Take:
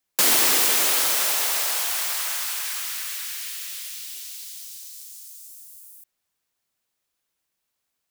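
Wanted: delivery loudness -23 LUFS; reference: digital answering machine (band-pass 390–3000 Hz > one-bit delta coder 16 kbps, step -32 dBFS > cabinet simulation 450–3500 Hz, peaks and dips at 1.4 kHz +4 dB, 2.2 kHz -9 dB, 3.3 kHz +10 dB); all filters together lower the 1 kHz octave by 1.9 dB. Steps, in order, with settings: band-pass 390–3000 Hz; peaking EQ 1 kHz -3.5 dB; one-bit delta coder 16 kbps, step -32 dBFS; cabinet simulation 450–3500 Hz, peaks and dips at 1.4 kHz +4 dB, 2.2 kHz -9 dB, 3.3 kHz +10 dB; trim +12.5 dB

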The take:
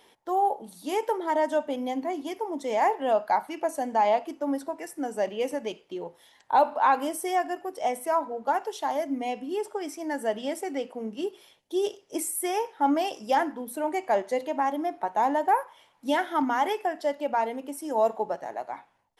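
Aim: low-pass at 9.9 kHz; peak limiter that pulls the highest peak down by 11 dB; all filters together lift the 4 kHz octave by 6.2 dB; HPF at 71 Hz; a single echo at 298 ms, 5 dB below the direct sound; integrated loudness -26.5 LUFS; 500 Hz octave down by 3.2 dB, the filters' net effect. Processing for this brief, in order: high-pass 71 Hz; low-pass 9.9 kHz; peaking EQ 500 Hz -4.5 dB; peaking EQ 4 kHz +9 dB; peak limiter -22.5 dBFS; delay 298 ms -5 dB; trim +5.5 dB

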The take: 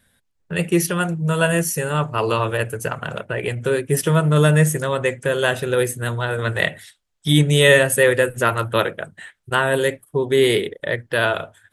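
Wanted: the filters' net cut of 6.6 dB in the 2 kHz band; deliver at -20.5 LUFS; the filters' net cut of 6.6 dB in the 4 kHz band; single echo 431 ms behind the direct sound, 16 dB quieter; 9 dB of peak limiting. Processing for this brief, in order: peaking EQ 2 kHz -7.5 dB; peaking EQ 4 kHz -5.5 dB; peak limiter -13.5 dBFS; delay 431 ms -16 dB; trim +3.5 dB

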